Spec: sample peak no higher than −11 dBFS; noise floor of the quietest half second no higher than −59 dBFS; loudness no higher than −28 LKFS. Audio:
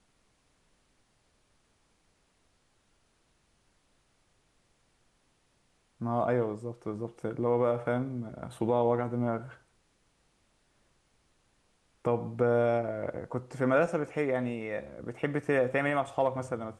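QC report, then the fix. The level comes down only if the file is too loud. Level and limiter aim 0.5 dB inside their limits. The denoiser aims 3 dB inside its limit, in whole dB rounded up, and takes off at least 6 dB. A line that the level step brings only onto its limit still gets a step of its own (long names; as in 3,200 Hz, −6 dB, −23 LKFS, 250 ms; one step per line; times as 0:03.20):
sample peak −14.5 dBFS: in spec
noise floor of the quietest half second −71 dBFS: in spec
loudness −30.5 LKFS: in spec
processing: no processing needed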